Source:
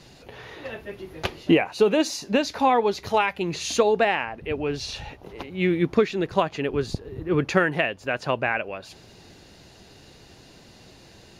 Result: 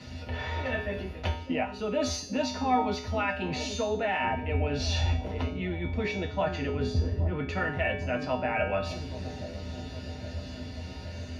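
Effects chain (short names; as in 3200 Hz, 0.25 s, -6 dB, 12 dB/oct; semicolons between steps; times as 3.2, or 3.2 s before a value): reverse; compressor 6:1, threshold -31 dBFS, peak gain reduction 17 dB; reverse; high shelf 7700 Hz -8 dB; dark delay 0.819 s, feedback 66%, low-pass 470 Hz, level -9 dB; reverb RT60 0.10 s, pre-delay 3 ms, DRR 3 dB; in parallel at 0 dB: limiter -21 dBFS, peak gain reduction 10 dB; on the sum: resonator 84 Hz, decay 0.61 s, harmonics odd, mix 90%; dynamic EQ 770 Hz, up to +5 dB, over -50 dBFS, Q 1.7; gain +5 dB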